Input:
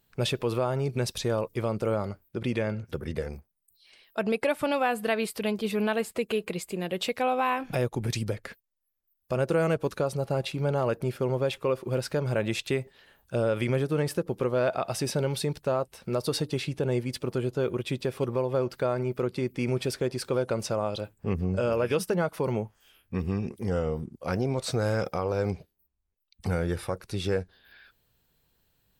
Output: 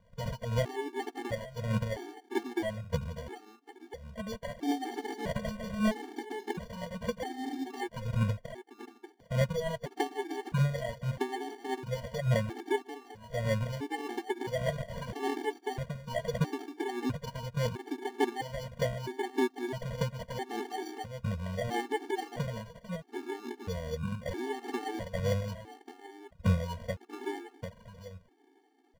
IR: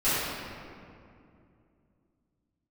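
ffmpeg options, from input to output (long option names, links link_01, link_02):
-filter_complex "[0:a]aexciter=amount=1.4:drive=9.1:freq=11000,asplit=2[link_01][link_02];[link_02]acompressor=threshold=-36dB:ratio=6,volume=2dB[link_03];[link_01][link_03]amix=inputs=2:normalize=0,asettb=1/sr,asplit=3[link_04][link_05][link_06];[link_04]atrim=end=4.724[link_07];[link_05]atrim=start=4.72:end=5.64,asetpts=PTS-STARTPTS,afade=type=in:duration=0.004:curve=qsin,afade=type=out:start_time=0.916:duration=0.004:curve=qsin,aemphasis=mode=production:type=50kf[link_08];[link_06]atrim=start=5.636[link_09];[link_07][link_08]acrossfade=duration=0.004:curve1=hsin:curve2=qsin[link_10];[link_10][link_09]acrossfade=duration=0.004:curve1=qsin:curve2=hsin,acrossover=split=330|3000[link_11][link_12][link_13];[link_12]acompressor=threshold=-25dB:ratio=6[link_14];[link_11][link_14][link_13]amix=inputs=3:normalize=0,aecho=1:1:745:0.266,aphaser=in_gain=1:out_gain=1:delay=3.2:decay=0.67:speed=1.7:type=sinusoidal,acrusher=samples=34:mix=1:aa=0.000001,highshelf=frequency=5000:gain=-10,afftfilt=real='re*gt(sin(2*PI*0.76*pts/sr)*(1-2*mod(floor(b*sr/1024/230),2)),0)':imag='im*gt(sin(2*PI*0.76*pts/sr)*(1-2*mod(floor(b*sr/1024/230),2)),0)':win_size=1024:overlap=0.75,volume=-8dB"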